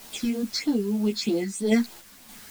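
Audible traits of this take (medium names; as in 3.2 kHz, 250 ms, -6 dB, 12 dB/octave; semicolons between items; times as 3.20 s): phasing stages 6, 3.2 Hz, lowest notch 700–2400 Hz; a quantiser's noise floor 8-bit, dither triangular; random-step tremolo; a shimmering, thickened sound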